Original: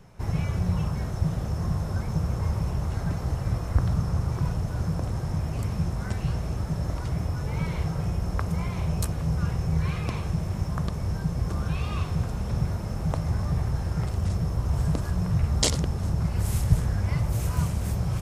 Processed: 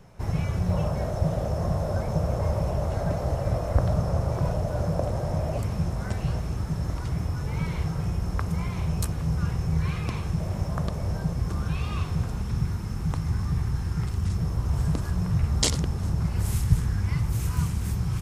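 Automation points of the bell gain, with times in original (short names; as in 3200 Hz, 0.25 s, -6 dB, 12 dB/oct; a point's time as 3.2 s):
bell 600 Hz 0.67 oct
+3 dB
from 0.7 s +14.5 dB
from 5.59 s +4 dB
from 6.4 s -3.5 dB
from 10.4 s +5.5 dB
from 11.33 s -4 dB
from 12.42 s -13 dB
from 14.38 s -4.5 dB
from 16.55 s -12 dB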